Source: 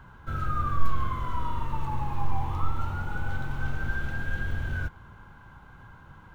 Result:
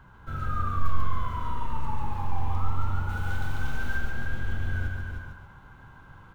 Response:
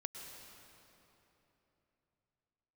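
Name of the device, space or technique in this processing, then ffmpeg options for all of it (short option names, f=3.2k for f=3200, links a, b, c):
ducked delay: -filter_complex "[0:a]asettb=1/sr,asplit=3[a][b][c];[a]atrim=end=3.094[d];[b]atrim=start=3.09:end=3.97,asetpts=PTS-STARTPTS,afade=t=in:d=0.004:c=qsin,afade=t=out:st=0.876:d=0.004:c=qsin,highshelf=f=2.7k:g=9.5[e];[c]atrim=start=3.966[f];[d][e]acrossfade=d=0.004:c1=hsin:c2=qsin[g];[g][f]acrossfade=d=0.004:c1=qsin:c2=hsin,aecho=1:1:43.73|142.9|277:0.251|0.631|0.251,asplit=3[h][i][j];[i]adelay=308,volume=-4dB[k];[j]apad=whole_len=355519[l];[k][l]sidechaincompress=threshold=-24dB:ratio=8:attack=16:release=1070[m];[h][m]amix=inputs=2:normalize=0,volume=-3dB"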